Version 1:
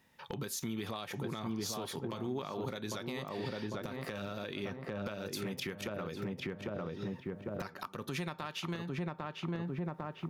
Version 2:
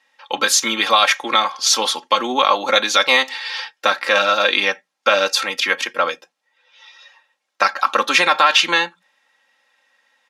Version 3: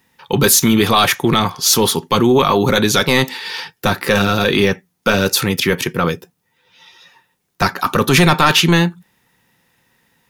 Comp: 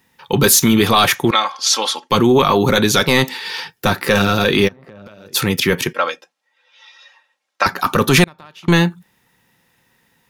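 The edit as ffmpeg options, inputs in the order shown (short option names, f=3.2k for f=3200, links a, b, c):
-filter_complex "[1:a]asplit=2[a][b];[0:a]asplit=2[c][d];[2:a]asplit=5[e][f][g][h][i];[e]atrim=end=1.312[j];[a]atrim=start=1.308:end=2.102[k];[f]atrim=start=2.098:end=4.69[l];[c]atrim=start=4.67:end=5.36[m];[g]atrim=start=5.34:end=5.932[n];[b]atrim=start=5.928:end=7.662[o];[h]atrim=start=7.658:end=8.242[p];[d]atrim=start=8.238:end=8.682[q];[i]atrim=start=8.678[r];[j][k]acrossfade=d=0.004:c1=hsin:c2=hsin[s];[s][l]acrossfade=d=0.004:c1=hsin:c2=hsin[t];[t][m]acrossfade=d=0.02:c1=tri:c2=tri[u];[u][n]acrossfade=d=0.02:c1=tri:c2=tri[v];[v][o]acrossfade=d=0.004:c1=hsin:c2=hsin[w];[w][p]acrossfade=d=0.004:c1=hsin:c2=hsin[x];[x][q]acrossfade=d=0.004:c1=hsin:c2=hsin[y];[y][r]acrossfade=d=0.004:c1=hsin:c2=hsin"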